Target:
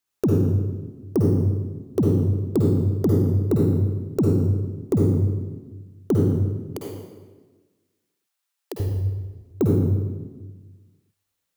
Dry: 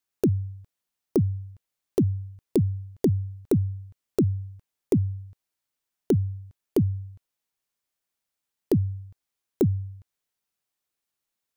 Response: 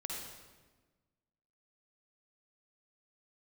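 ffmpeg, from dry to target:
-filter_complex "[0:a]asettb=1/sr,asplit=3[a][b][c];[a]atrim=end=6.324[d];[b]atrim=start=6.32:end=8.8,asetpts=PTS-STARTPTS,afade=t=in:d=0.004:c=qsin,afade=t=out:st=2.476:d=0.004:c=qsin,highpass=780[e];[c]atrim=start=8.796[f];[d][e]acrossfade=d=0.004:c1=hsin:c2=qsin[g];[g][f]acrossfade=d=0.004:c1=qsin:c2=hsin,asoftclip=type=tanh:threshold=-12.5dB[h];[1:a]atrim=start_sample=2205[i];[h][i]afir=irnorm=-1:irlink=0,volume=5.5dB"

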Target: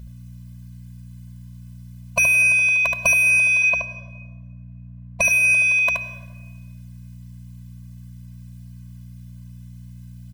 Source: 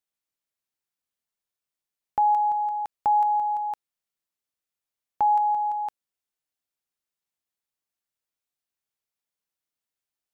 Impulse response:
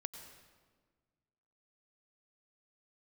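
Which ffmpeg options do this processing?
-filter_complex "[0:a]asplit=3[a][b][c];[a]afade=t=out:st=3.62:d=0.02[d];[b]lowpass=1k,afade=t=in:st=3.62:d=0.02,afade=t=out:st=5.23:d=0.02[e];[c]afade=t=in:st=5.23:d=0.02[f];[d][e][f]amix=inputs=3:normalize=0,asoftclip=type=tanh:threshold=-27.5dB,aeval=exprs='val(0)+0.000794*(sin(2*PI*60*n/s)+sin(2*PI*2*60*n/s)/2+sin(2*PI*3*60*n/s)/3+sin(2*PI*4*60*n/s)/4+sin(2*PI*5*60*n/s)/5)':c=same,aeval=exprs='0.0447*(cos(1*acos(clip(val(0)/0.0447,-1,1)))-cos(1*PI/2))+0.00447*(cos(5*acos(clip(val(0)/0.0447,-1,1)))-cos(5*PI/2))+0.000708*(cos(7*acos(clip(val(0)/0.0447,-1,1)))-cos(7*PI/2))':c=same,aecho=1:1:74:0.631,asplit=2[g][h];[1:a]atrim=start_sample=2205,lowshelf=f=180:g=-8[i];[h][i]afir=irnorm=-1:irlink=0,volume=3dB[j];[g][j]amix=inputs=2:normalize=0,alimiter=level_in=19.5dB:limit=-1dB:release=50:level=0:latency=1,afftfilt=real='re*eq(mod(floor(b*sr/1024/240),2),0)':imag='im*eq(mod(floor(b*sr/1024/240),2),0)':win_size=1024:overlap=0.75"

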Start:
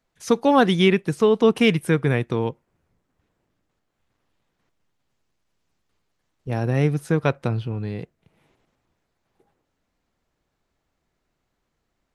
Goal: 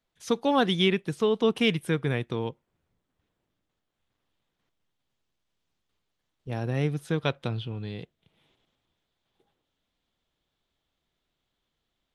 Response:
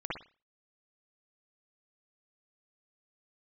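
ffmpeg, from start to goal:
-af "asetnsamples=n=441:p=0,asendcmd='7.08 equalizer g 14.5',equalizer=f=3.4k:w=2.5:g=7,volume=-7dB"

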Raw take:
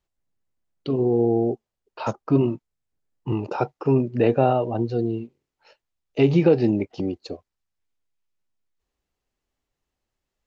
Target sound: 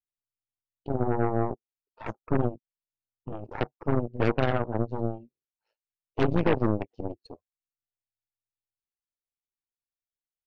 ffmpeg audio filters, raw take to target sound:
-af "tremolo=f=110:d=0.667,afftdn=nr=16:nf=-33,aeval=exprs='0.473*(cos(1*acos(clip(val(0)/0.473,-1,1)))-cos(1*PI/2))+0.0211*(cos(7*acos(clip(val(0)/0.473,-1,1)))-cos(7*PI/2))+0.0944*(cos(8*acos(clip(val(0)/0.473,-1,1)))-cos(8*PI/2))':c=same,volume=-5dB"

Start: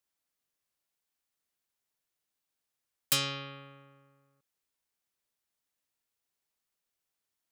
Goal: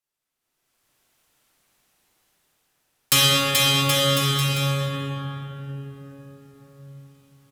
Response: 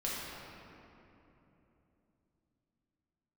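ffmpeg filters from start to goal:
-filter_complex "[0:a]aecho=1:1:430|774|1049|1269|1445:0.631|0.398|0.251|0.158|0.1[a];[1:a]atrim=start_sample=2205,asetrate=29547,aresample=44100[b];[a][b]afir=irnorm=-1:irlink=0,dynaudnorm=f=110:g=13:m=16dB,volume=-2.5dB"

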